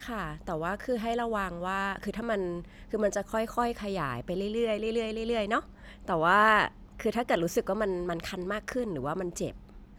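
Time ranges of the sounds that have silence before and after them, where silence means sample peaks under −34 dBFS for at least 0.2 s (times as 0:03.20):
0:02.93–0:05.60
0:06.08–0:06.68
0:07.00–0:09.51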